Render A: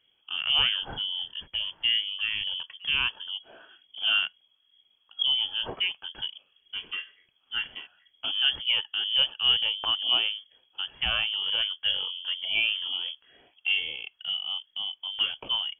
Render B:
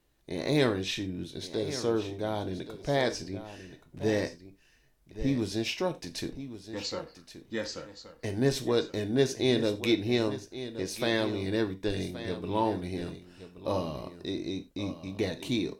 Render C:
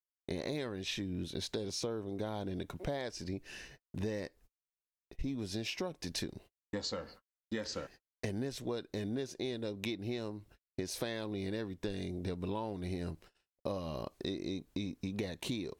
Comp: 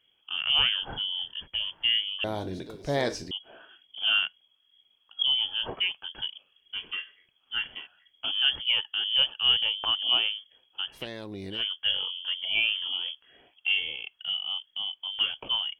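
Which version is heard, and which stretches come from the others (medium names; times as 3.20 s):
A
2.24–3.31 s: from B
11.00–11.58 s: from C, crossfade 0.16 s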